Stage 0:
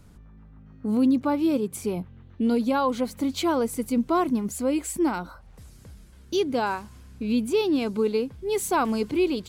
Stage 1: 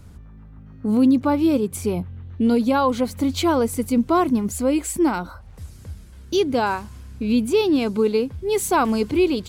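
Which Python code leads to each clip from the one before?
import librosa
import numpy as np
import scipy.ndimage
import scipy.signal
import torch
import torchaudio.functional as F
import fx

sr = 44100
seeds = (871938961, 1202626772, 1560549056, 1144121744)

y = fx.peak_eq(x, sr, hz=83.0, db=12.0, octaves=0.45)
y = F.gain(torch.from_numpy(y), 4.5).numpy()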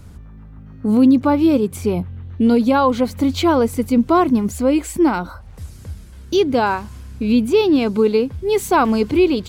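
y = fx.dynamic_eq(x, sr, hz=9700.0, q=0.71, threshold_db=-46.0, ratio=4.0, max_db=-8)
y = F.gain(torch.from_numpy(y), 4.0).numpy()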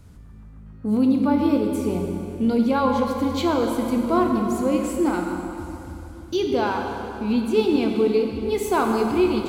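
y = fx.rev_plate(x, sr, seeds[0], rt60_s=3.1, hf_ratio=0.8, predelay_ms=0, drr_db=1.5)
y = F.gain(torch.from_numpy(y), -7.5).numpy()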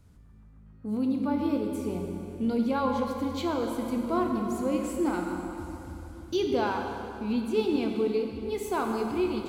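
y = fx.rider(x, sr, range_db=4, speed_s=2.0)
y = F.gain(torch.from_numpy(y), -7.5).numpy()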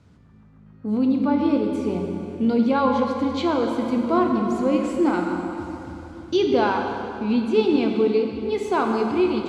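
y = fx.bandpass_edges(x, sr, low_hz=110.0, high_hz=5000.0)
y = F.gain(torch.from_numpy(y), 7.5).numpy()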